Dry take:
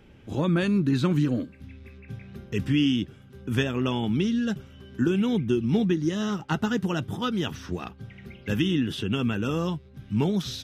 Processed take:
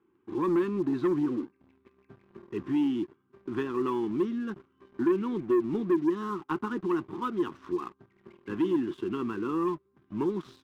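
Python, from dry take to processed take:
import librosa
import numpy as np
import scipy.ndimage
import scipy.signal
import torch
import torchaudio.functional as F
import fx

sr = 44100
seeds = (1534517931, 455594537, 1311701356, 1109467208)

y = fx.double_bandpass(x, sr, hz=610.0, octaves=1.6)
y = fx.leveller(y, sr, passes=2)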